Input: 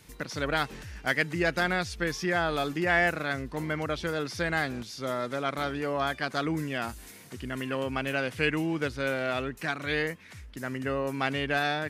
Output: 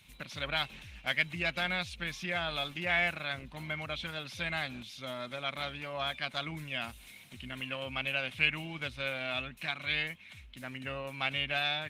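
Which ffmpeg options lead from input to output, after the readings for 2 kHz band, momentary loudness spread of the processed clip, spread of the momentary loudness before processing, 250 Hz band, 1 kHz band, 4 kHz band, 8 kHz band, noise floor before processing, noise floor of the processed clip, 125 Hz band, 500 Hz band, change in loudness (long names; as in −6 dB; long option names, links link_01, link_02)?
−3.5 dB, 12 LU, 9 LU, −12.0 dB, −8.0 dB, +2.0 dB, −9.0 dB, −49 dBFS, −54 dBFS, −7.5 dB, −10.0 dB, −4.5 dB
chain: -af "superequalizer=6b=0.398:7b=0.282:12b=3.55:13b=3.55,volume=-7dB" -ar 48000 -c:a libopus -b:a 20k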